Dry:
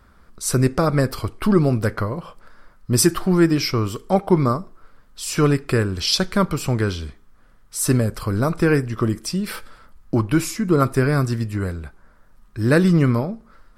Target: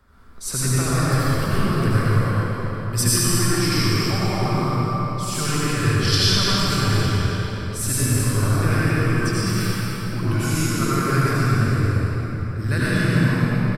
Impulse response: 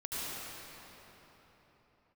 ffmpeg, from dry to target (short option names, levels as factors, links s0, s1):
-filter_complex "[0:a]acrossover=split=120|1200[s0][s1][s2];[s1]acompressor=threshold=0.0398:ratio=6[s3];[s0][s3][s2]amix=inputs=3:normalize=0,aecho=1:1:207|274.1:0.355|0.251[s4];[1:a]atrim=start_sample=2205[s5];[s4][s5]afir=irnorm=-1:irlink=0"